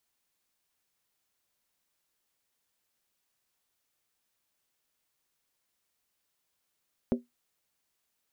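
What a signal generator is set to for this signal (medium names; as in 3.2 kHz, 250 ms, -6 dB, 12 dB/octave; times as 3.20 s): skin hit, lowest mode 242 Hz, decay 0.17 s, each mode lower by 5.5 dB, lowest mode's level -20 dB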